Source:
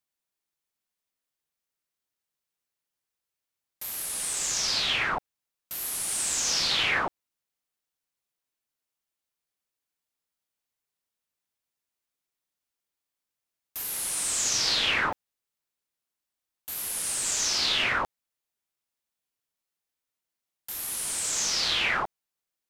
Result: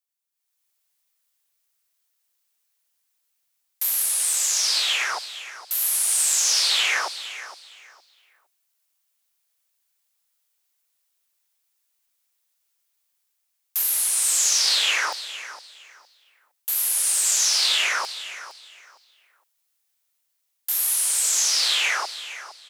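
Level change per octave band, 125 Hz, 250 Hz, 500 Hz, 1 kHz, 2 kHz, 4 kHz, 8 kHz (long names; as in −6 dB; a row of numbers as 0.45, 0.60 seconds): below −40 dB, below −15 dB, −2.5 dB, +0.5 dB, +3.0 dB, +5.5 dB, +8.0 dB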